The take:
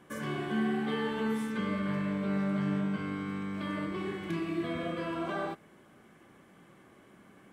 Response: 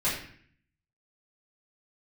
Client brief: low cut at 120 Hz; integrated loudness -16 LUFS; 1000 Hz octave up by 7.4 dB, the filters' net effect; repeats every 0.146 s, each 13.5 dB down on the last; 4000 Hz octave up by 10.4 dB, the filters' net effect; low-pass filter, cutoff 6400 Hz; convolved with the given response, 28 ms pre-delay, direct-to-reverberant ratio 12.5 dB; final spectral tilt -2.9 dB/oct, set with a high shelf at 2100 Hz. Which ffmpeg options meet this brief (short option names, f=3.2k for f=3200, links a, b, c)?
-filter_complex "[0:a]highpass=120,lowpass=6.4k,equalizer=f=1k:t=o:g=7,highshelf=f=2.1k:g=7,equalizer=f=4k:t=o:g=7.5,aecho=1:1:146|292:0.211|0.0444,asplit=2[a][b];[1:a]atrim=start_sample=2205,adelay=28[c];[b][c]afir=irnorm=-1:irlink=0,volume=-22.5dB[d];[a][d]amix=inputs=2:normalize=0,volume=15dB"